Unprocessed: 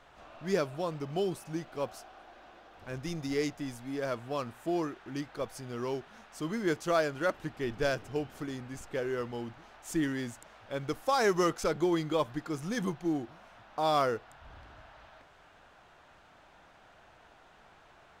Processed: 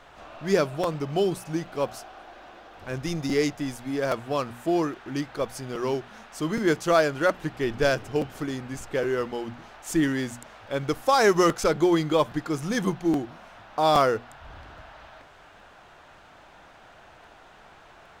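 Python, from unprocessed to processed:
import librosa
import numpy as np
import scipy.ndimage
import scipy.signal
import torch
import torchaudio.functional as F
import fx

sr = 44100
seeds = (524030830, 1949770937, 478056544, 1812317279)

y = fx.hum_notches(x, sr, base_hz=60, count=4)
y = fx.buffer_crackle(y, sr, first_s=0.83, period_s=0.82, block=256, kind='repeat')
y = y * 10.0 ** (7.5 / 20.0)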